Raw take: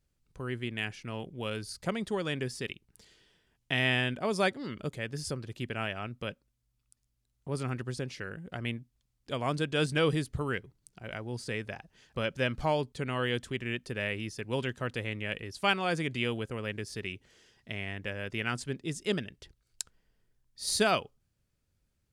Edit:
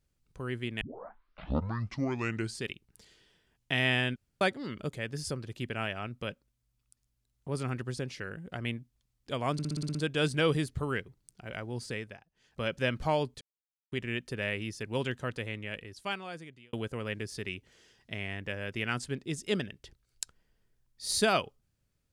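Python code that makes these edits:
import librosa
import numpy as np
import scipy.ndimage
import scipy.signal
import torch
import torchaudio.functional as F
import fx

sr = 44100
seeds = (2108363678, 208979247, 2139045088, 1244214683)

y = fx.edit(x, sr, fx.tape_start(start_s=0.81, length_s=1.86),
    fx.room_tone_fill(start_s=4.16, length_s=0.25),
    fx.stutter(start_s=9.53, slice_s=0.06, count=8),
    fx.fade_down_up(start_s=11.44, length_s=0.84, db=-19.0, fade_s=0.4),
    fx.silence(start_s=12.99, length_s=0.51),
    fx.fade_out_span(start_s=14.7, length_s=1.61), tone=tone)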